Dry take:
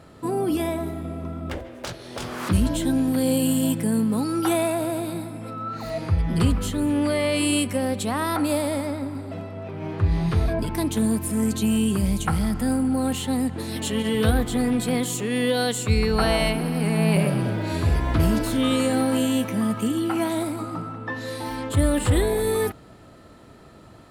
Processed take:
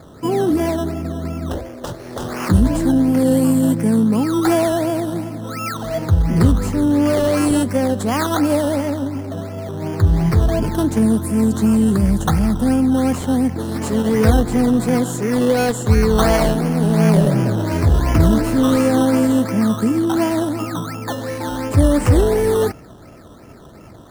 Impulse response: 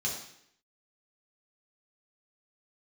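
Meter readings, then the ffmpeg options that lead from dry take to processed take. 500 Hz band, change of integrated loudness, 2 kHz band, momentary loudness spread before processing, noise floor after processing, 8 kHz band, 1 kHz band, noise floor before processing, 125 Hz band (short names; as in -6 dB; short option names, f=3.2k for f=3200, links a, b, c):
+6.5 dB, +6.5 dB, +2.5 dB, 11 LU, -41 dBFS, +1.5 dB, +6.0 dB, -47 dBFS, +7.0 dB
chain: -filter_complex "[0:a]highshelf=f=5.1k:g=-9.5,acrossover=split=790|4700[a][b][c];[b]acrusher=samples=15:mix=1:aa=0.000001:lfo=1:lforange=9:lforate=2.8[d];[a][d][c]amix=inputs=3:normalize=0,volume=7dB"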